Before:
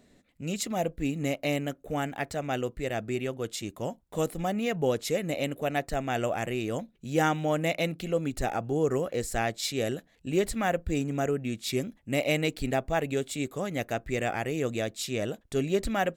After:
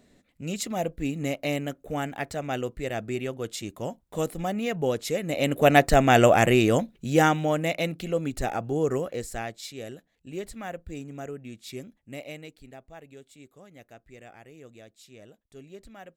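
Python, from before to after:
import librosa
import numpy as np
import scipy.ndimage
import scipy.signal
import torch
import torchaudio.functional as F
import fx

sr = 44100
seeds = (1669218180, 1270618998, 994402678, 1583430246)

y = fx.gain(x, sr, db=fx.line((5.26, 0.5), (5.67, 12.0), (6.54, 12.0), (7.64, 1.0), (8.93, 1.0), (9.74, -9.0), (12.02, -9.0), (12.63, -18.5)))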